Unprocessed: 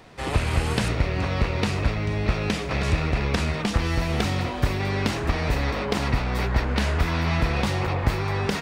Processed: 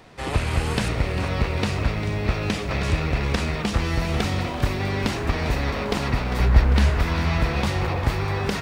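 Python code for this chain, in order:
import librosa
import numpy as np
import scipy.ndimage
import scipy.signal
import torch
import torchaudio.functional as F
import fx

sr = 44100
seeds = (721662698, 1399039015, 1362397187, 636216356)

y = fx.low_shelf(x, sr, hz=110.0, db=11.5, at=(6.4, 6.9))
y = fx.echo_crushed(y, sr, ms=399, feedback_pct=55, bits=8, wet_db=-12)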